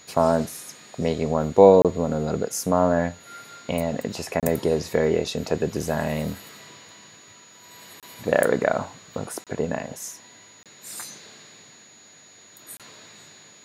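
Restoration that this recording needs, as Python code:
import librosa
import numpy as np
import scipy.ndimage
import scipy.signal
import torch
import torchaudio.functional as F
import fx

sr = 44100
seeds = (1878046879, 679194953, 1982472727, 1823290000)

y = fx.notch(x, sr, hz=6800.0, q=30.0)
y = fx.fix_interpolate(y, sr, at_s=(1.82, 4.4, 8.0, 9.44, 10.63, 12.77), length_ms=27.0)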